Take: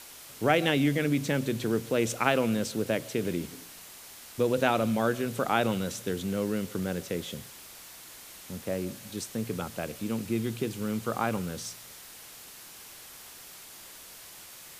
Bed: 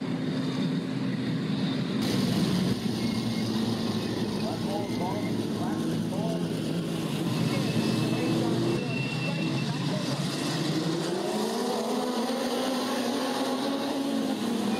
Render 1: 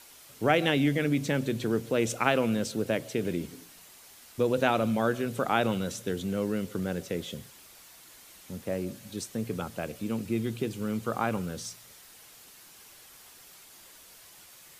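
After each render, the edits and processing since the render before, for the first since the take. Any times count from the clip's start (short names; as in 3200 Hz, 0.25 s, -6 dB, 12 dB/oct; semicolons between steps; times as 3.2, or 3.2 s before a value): denoiser 6 dB, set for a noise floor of -48 dBFS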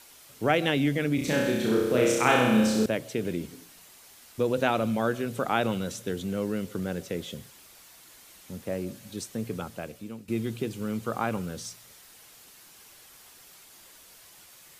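1.15–2.86 flutter echo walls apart 5.5 m, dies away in 1.1 s; 9.33–10.28 fade out equal-power, to -15.5 dB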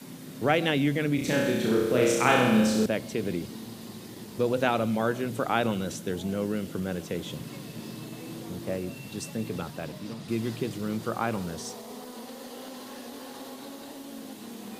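add bed -13.5 dB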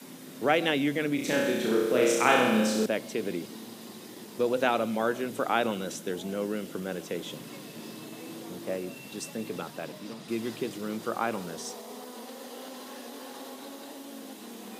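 HPF 240 Hz 12 dB/oct; notch 4400 Hz, Q 25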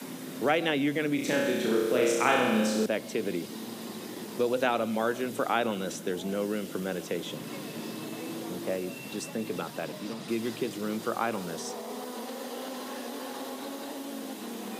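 three-band squash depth 40%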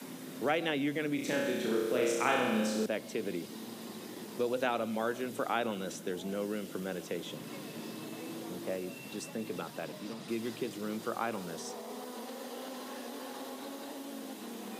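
gain -5 dB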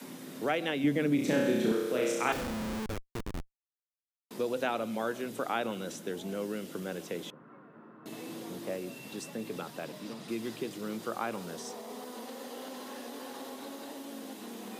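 0.84–1.72 low shelf 470 Hz +9 dB; 2.32–4.31 Schmitt trigger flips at -30.5 dBFS; 7.3–8.06 ladder low-pass 1500 Hz, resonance 65%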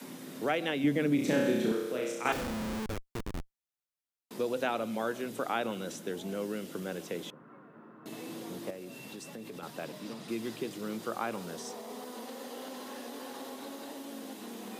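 1.47–2.25 fade out linear, to -7 dB; 8.7–9.63 compressor 3:1, threshold -41 dBFS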